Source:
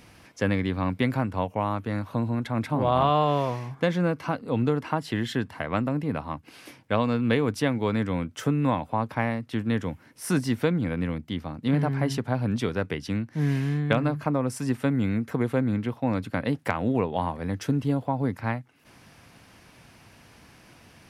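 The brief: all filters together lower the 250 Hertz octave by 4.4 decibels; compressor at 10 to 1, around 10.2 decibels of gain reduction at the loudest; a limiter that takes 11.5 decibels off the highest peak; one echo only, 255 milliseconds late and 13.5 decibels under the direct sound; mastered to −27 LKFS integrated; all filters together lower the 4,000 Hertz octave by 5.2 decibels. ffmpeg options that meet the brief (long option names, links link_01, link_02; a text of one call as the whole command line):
ffmpeg -i in.wav -af "equalizer=frequency=250:width_type=o:gain=-5.5,equalizer=frequency=4000:width_type=o:gain=-7,acompressor=threshold=-29dB:ratio=10,alimiter=level_in=0.5dB:limit=-24dB:level=0:latency=1,volume=-0.5dB,aecho=1:1:255:0.211,volume=9.5dB" out.wav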